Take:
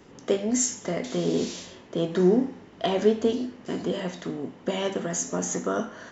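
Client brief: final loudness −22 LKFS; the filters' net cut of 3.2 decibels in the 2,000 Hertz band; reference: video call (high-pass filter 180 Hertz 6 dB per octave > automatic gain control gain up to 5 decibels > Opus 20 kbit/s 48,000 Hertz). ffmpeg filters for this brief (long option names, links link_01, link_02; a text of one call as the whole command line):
ffmpeg -i in.wav -af "highpass=frequency=180:poles=1,equalizer=frequency=2000:width_type=o:gain=-4,dynaudnorm=maxgain=5dB,volume=7dB" -ar 48000 -c:a libopus -b:a 20k out.opus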